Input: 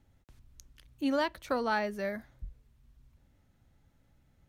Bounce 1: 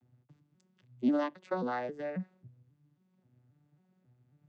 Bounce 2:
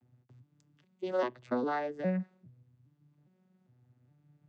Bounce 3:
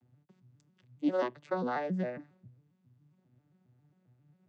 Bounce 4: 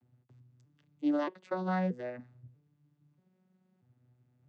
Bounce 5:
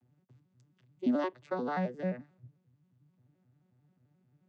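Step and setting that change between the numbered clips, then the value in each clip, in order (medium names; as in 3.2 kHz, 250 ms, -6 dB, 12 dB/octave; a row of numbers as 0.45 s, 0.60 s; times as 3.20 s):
vocoder on a broken chord, a note every: 269 ms, 407 ms, 135 ms, 634 ms, 88 ms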